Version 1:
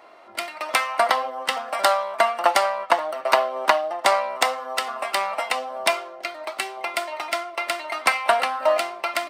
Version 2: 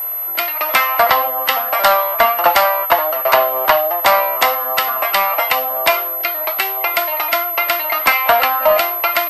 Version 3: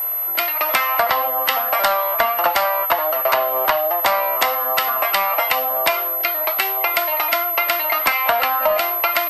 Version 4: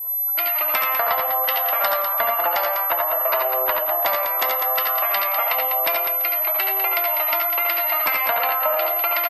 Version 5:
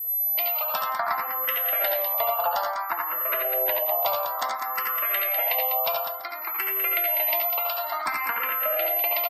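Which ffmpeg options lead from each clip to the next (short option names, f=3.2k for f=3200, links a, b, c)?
-filter_complex "[0:a]acontrast=81,asplit=2[a][b];[b]highpass=f=720:p=1,volume=9dB,asoftclip=type=tanh:threshold=-0.5dB[c];[a][c]amix=inputs=2:normalize=0,lowpass=f=4.5k:p=1,volume=-6dB,aeval=exprs='val(0)+0.112*sin(2*PI*12000*n/s)':c=same,volume=-1dB"
-af "acompressor=threshold=-14dB:ratio=6"
-af "afftdn=nr=31:nf=-30,aecho=1:1:72|85|172|199|334|449:0.398|0.531|0.119|0.422|0.106|0.106,volume=-6dB"
-filter_complex "[0:a]asplit=2[a][b];[b]afreqshift=0.57[c];[a][c]amix=inputs=2:normalize=1,volume=-2dB"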